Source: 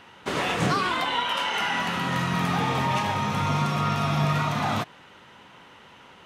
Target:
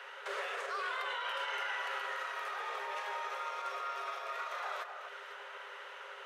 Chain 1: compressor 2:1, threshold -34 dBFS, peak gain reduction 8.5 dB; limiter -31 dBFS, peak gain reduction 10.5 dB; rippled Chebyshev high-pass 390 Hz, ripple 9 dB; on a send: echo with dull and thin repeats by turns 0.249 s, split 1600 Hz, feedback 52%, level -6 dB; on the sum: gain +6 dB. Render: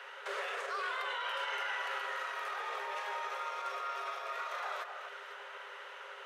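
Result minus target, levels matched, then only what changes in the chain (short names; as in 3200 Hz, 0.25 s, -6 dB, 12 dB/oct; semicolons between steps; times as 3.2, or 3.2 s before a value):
compressor: peak gain reduction -4 dB
change: compressor 2:1, threshold -41.5 dBFS, peak gain reduction 12 dB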